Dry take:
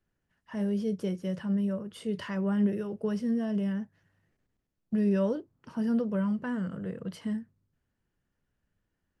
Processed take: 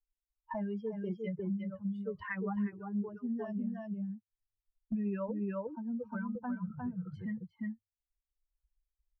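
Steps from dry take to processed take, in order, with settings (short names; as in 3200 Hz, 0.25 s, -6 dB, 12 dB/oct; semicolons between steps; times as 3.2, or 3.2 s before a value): per-bin expansion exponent 3; dynamic EQ 530 Hz, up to -6 dB, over -48 dBFS, Q 1.4; 5.31–6.35 compressor 4:1, threshold -46 dBFS, peak gain reduction 15.5 dB; LFO low-pass sine 1.8 Hz 470–2100 Hz; on a send: echo 0.354 s -3 dB; on the sum: three-band squash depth 100%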